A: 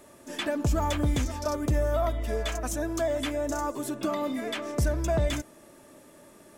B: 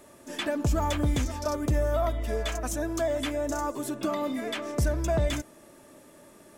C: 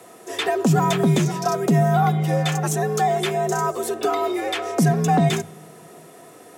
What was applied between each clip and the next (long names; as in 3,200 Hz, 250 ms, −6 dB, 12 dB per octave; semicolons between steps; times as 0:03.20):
no processing that can be heard
frequency shifter +99 Hz; on a send at −22 dB: convolution reverb, pre-delay 4 ms; on the sum: level +7.5 dB